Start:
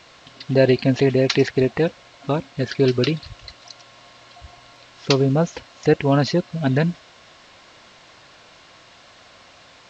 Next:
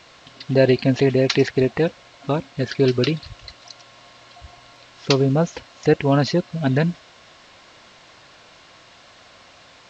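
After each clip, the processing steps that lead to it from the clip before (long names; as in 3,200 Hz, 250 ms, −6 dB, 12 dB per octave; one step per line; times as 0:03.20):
no processing that can be heard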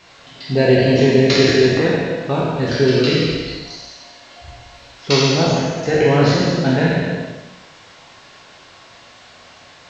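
peak hold with a decay on every bin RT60 1.01 s
reverb whose tail is shaped and stops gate 500 ms falling, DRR −2.5 dB
level −2.5 dB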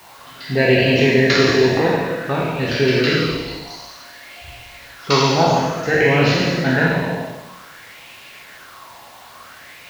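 in parallel at −9 dB: bit-depth reduction 6 bits, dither triangular
on the sum: auto-filter bell 0.55 Hz 860–2,600 Hz +12 dB
level −5 dB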